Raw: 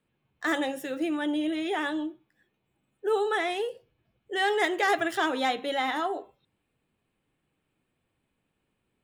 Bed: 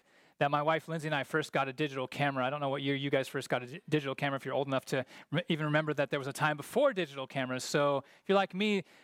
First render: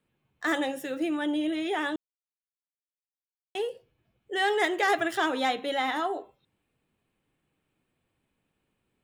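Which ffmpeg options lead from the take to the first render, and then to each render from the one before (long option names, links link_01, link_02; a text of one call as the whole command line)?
ffmpeg -i in.wav -filter_complex "[0:a]asplit=3[link_01][link_02][link_03];[link_01]atrim=end=1.96,asetpts=PTS-STARTPTS,afade=type=out:start_time=1.956:duration=0.004:curve=hsin[link_04];[link_02]atrim=start=1.96:end=3.55,asetpts=PTS-STARTPTS,volume=0[link_05];[link_03]atrim=start=3.55,asetpts=PTS-STARTPTS,afade=type=in:duration=0.004:curve=hsin[link_06];[link_04][link_05][link_06]concat=n=3:v=0:a=1" out.wav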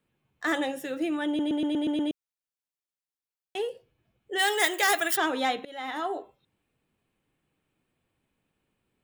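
ffmpeg -i in.wav -filter_complex "[0:a]asplit=3[link_01][link_02][link_03];[link_01]afade=type=out:start_time=4.38:duration=0.02[link_04];[link_02]aemphasis=mode=production:type=riaa,afade=type=in:start_time=4.38:duration=0.02,afade=type=out:start_time=5.15:duration=0.02[link_05];[link_03]afade=type=in:start_time=5.15:duration=0.02[link_06];[link_04][link_05][link_06]amix=inputs=3:normalize=0,asplit=9[link_07][link_08][link_09][link_10][link_11][link_12][link_13][link_14][link_15];[link_07]atrim=end=1.392[link_16];[link_08]atrim=start=1.268:end=1.392[link_17];[link_09]atrim=start=1.268:end=1.392[link_18];[link_10]atrim=start=1.268:end=1.392[link_19];[link_11]atrim=start=1.268:end=1.392[link_20];[link_12]atrim=start=1.268:end=1.392[link_21];[link_13]atrim=start=1.268:end=1.392[link_22];[link_14]atrim=start=2.108:end=5.65,asetpts=PTS-STARTPTS,afade=type=out:start_time=3.538:duration=0.004:curve=hsin:silence=0.0841395[link_23];[link_15]atrim=start=5.65,asetpts=PTS-STARTPTS,afade=type=in:duration=0.49:silence=0.0841395[link_24];[link_16][link_17]acrossfade=duration=0.004:curve1=hsin:curve2=hsin[link_25];[link_25][link_18]acrossfade=duration=0.004:curve1=hsin:curve2=hsin[link_26];[link_26][link_19]acrossfade=duration=0.004:curve1=hsin:curve2=hsin[link_27];[link_27][link_20]acrossfade=duration=0.004:curve1=hsin:curve2=hsin[link_28];[link_28][link_21]acrossfade=duration=0.004:curve1=hsin:curve2=hsin[link_29];[link_29][link_22]acrossfade=duration=0.004:curve1=hsin:curve2=hsin[link_30];[link_23][link_24]concat=n=2:v=0:a=1[link_31];[link_30][link_31]acrossfade=duration=0.004:curve1=hsin:curve2=hsin" out.wav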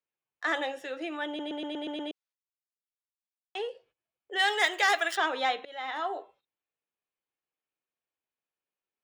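ffmpeg -i in.wav -filter_complex "[0:a]agate=range=-15dB:threshold=-58dB:ratio=16:detection=peak,acrossover=split=420 6400:gain=0.126 1 0.0891[link_01][link_02][link_03];[link_01][link_02][link_03]amix=inputs=3:normalize=0" out.wav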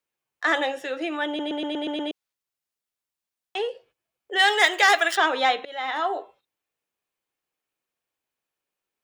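ffmpeg -i in.wav -af "volume=7dB" out.wav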